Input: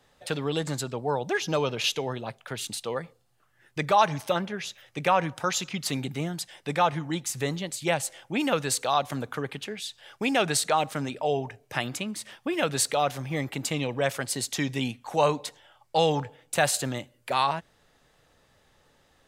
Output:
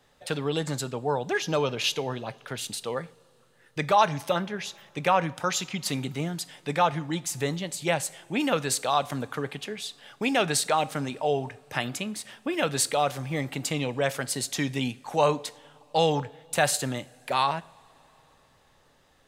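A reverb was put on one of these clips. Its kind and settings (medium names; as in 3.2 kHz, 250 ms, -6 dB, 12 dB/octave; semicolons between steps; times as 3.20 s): two-slope reverb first 0.43 s, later 4.3 s, from -20 dB, DRR 16 dB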